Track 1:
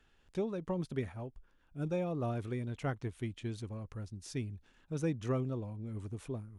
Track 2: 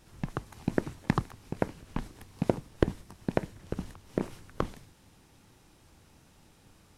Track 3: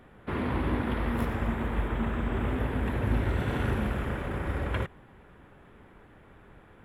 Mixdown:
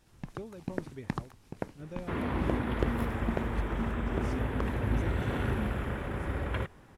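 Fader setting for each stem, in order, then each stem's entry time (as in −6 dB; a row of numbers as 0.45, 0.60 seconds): −8.5, −7.0, −2.5 decibels; 0.00, 0.00, 1.80 seconds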